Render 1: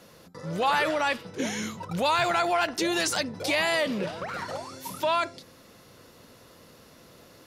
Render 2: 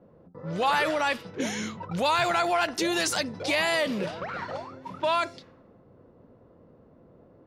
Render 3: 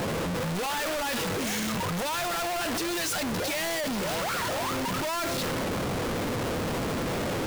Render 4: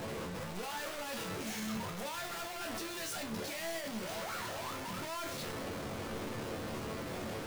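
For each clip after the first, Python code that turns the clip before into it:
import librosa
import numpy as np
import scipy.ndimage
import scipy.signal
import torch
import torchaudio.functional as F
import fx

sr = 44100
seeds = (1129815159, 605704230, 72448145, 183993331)

y1 = fx.env_lowpass(x, sr, base_hz=540.0, full_db=-25.5)
y2 = np.sign(y1) * np.sqrt(np.mean(np.square(y1)))
y3 = fx.resonator_bank(y2, sr, root=38, chord='major', decay_s=0.28)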